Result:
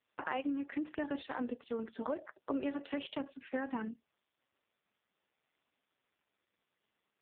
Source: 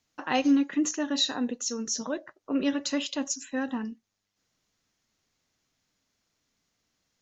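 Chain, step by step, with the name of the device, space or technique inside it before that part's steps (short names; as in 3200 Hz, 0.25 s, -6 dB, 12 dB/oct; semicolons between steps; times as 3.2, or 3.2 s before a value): voicemail (BPF 320–2900 Hz; compressor 10:1, threshold -35 dBFS, peak gain reduction 13.5 dB; gain +3 dB; AMR-NB 4.75 kbps 8000 Hz)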